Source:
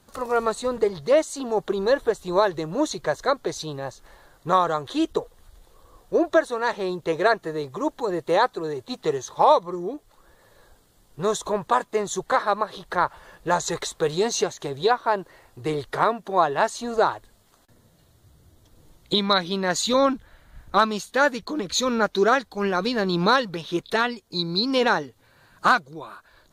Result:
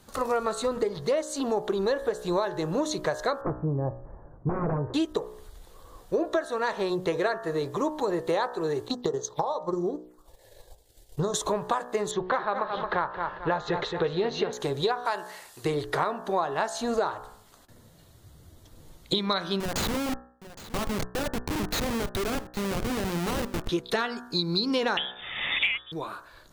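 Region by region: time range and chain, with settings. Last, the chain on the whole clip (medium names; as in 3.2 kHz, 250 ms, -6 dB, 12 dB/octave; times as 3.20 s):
3.41–4.94 s: peaking EQ 97 Hz +9.5 dB 3 oct + integer overflow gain 16.5 dB + Gaussian low-pass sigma 8.2 samples
8.88–11.34 s: compression 5:1, threshold -25 dBFS + transient shaper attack +6 dB, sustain -10 dB + touch-sensitive phaser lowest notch 160 Hz, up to 2.4 kHz, full sweep at -30.5 dBFS
12.11–14.53 s: low-pass 3.6 kHz 24 dB/octave + feedback delay 222 ms, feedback 31%, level -9.5 dB
15.05–15.65 s: low-pass 11 kHz + tilt EQ +4 dB/octave
19.60–23.69 s: compression, threshold -25 dBFS + Schmitt trigger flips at -27.5 dBFS + delay 815 ms -16.5 dB
24.97–25.92 s: frequency inversion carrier 3.6 kHz + three bands compressed up and down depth 100%
whole clip: de-hum 61.21 Hz, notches 30; compression, threshold -27 dBFS; trim +3.5 dB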